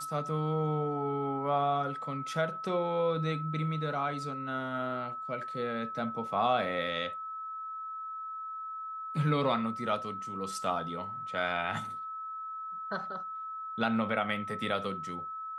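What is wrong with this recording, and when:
whine 1.3 kHz -37 dBFS

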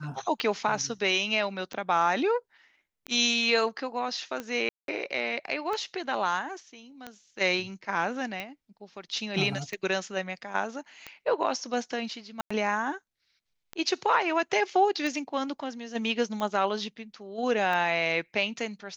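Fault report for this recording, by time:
tick 45 rpm -20 dBFS
4.69–4.88 s: dropout 192 ms
12.41–12.51 s: dropout 95 ms

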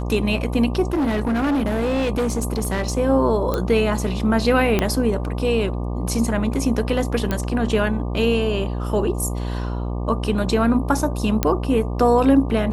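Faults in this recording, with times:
buzz 60 Hz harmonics 20 -25 dBFS
0.93–2.97 s: clipped -17.5 dBFS
3.54 s: pop -9 dBFS
4.79 s: pop -5 dBFS
7.31 s: pop -9 dBFS
11.43 s: pop -3 dBFS

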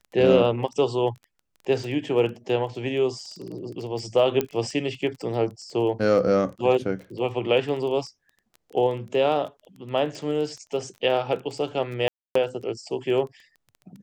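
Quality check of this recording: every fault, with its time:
crackle 13 per s -33 dBFS
4.41 s: pop -11 dBFS
12.08–12.35 s: dropout 274 ms

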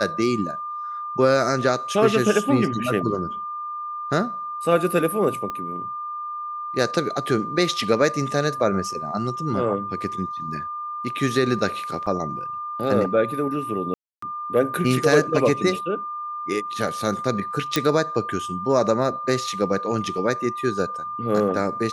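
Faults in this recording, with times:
whine 1.2 kHz -28 dBFS
5.50 s: pop -17 dBFS
12.06–12.07 s: dropout 6.2 ms
13.94–14.22 s: dropout 284 ms
17.76 s: pop -4 dBFS

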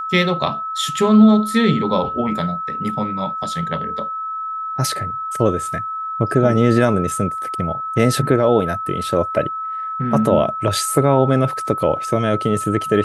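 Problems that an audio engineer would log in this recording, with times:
whine 1.3 kHz -23 dBFS

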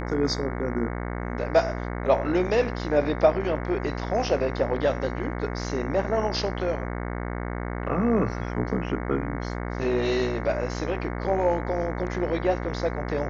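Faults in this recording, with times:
buzz 60 Hz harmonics 37 -31 dBFS

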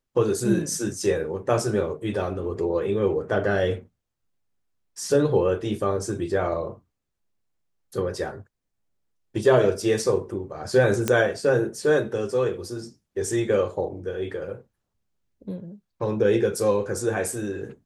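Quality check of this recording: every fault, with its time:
11.08 s: pop -7 dBFS

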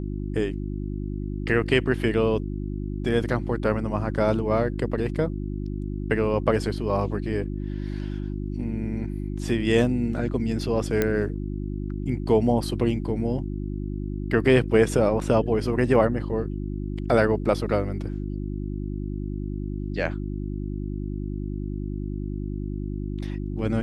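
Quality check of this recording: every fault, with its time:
hum 50 Hz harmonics 7 -30 dBFS
11.02 s: pop -9 dBFS

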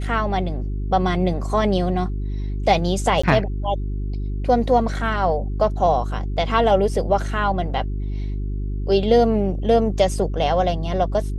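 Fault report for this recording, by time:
hum 50 Hz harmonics 8 -25 dBFS
3.22–3.23 s: dropout 15 ms

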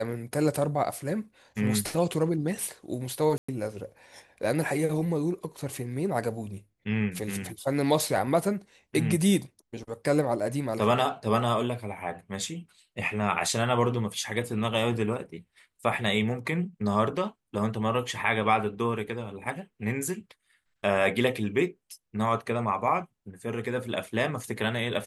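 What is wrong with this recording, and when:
3.38–3.48 s: dropout 105 ms

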